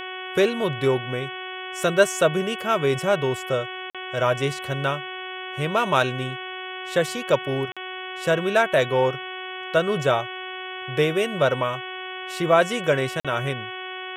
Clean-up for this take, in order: de-hum 371.6 Hz, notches 9; interpolate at 3.90/7.72/13.20 s, 46 ms

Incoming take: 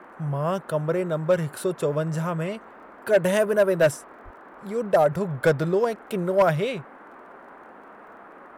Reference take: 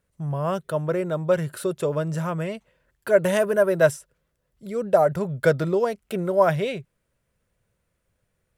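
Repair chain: clip repair -12 dBFS; de-click; 4.24–4.36 s: high-pass 140 Hz 24 dB/octave; noise print and reduce 28 dB

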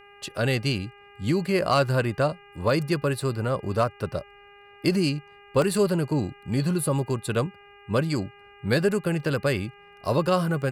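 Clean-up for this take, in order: clip repair -11.5 dBFS; de-hum 405.2 Hz, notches 7; interpolate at 5.62 s, 1.3 ms

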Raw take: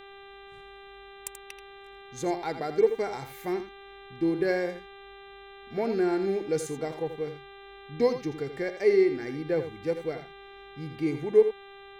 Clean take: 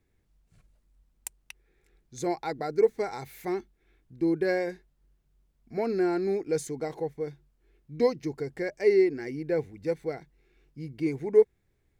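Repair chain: de-hum 396.1 Hz, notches 10; expander -40 dBFS, range -21 dB; inverse comb 83 ms -10.5 dB

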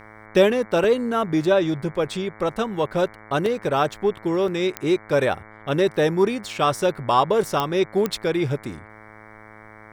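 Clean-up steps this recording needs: de-click; de-hum 107.9 Hz, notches 21; interpolate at 0.84/3.07/3.46/4.48/6.53 s, 1.8 ms

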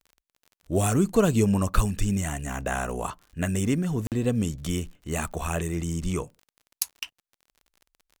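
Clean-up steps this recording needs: de-click; interpolate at 4.07 s, 48 ms

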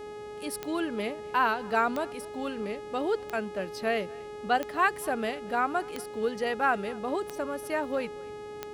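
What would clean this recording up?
de-click; de-hum 418.9 Hz, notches 27; noise print and reduce 30 dB; inverse comb 240 ms -23.5 dB

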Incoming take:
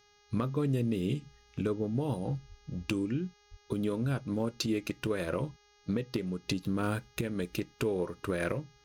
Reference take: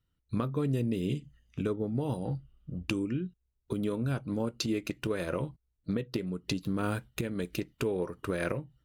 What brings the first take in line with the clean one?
clip repair -20.5 dBFS; de-hum 412.2 Hz, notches 16; 2.48–2.60 s: high-pass 140 Hz 24 dB/octave; 3.50–3.62 s: high-pass 140 Hz 24 dB/octave

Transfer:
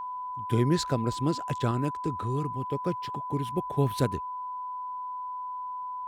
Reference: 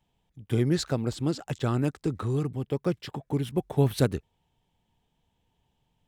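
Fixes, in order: band-stop 1 kHz, Q 30; trim 0 dB, from 1.71 s +3 dB

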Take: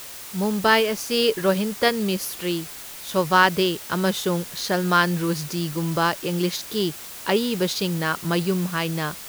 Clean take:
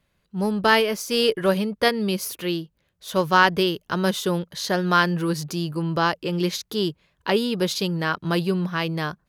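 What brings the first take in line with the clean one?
noise reduction 30 dB, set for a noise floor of -38 dBFS

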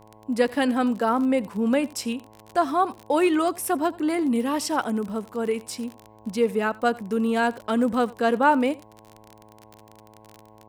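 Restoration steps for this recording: de-click; de-hum 108.3 Hz, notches 10; inverse comb 85 ms -22 dB

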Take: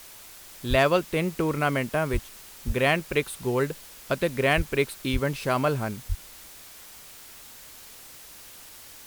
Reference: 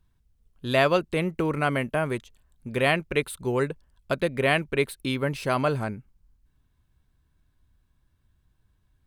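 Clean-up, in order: clip repair -10.5 dBFS; de-plosive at 0.69/2.12/2.66/4.56/5.12/6.08 s; noise print and reduce 21 dB

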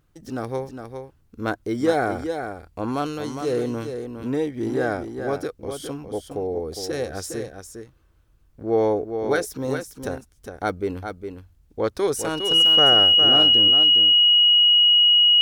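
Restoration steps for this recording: band-stop 2.9 kHz, Q 30; inverse comb 409 ms -7.5 dB

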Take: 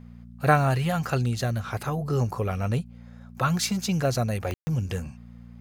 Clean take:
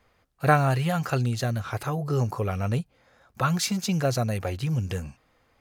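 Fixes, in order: de-click; de-hum 58.8 Hz, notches 4; room tone fill 4.54–4.67 s

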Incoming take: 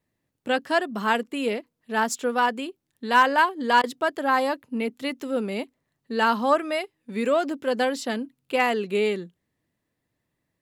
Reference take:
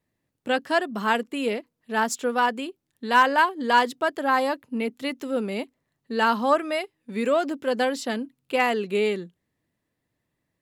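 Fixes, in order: interpolate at 3.82 s, 15 ms

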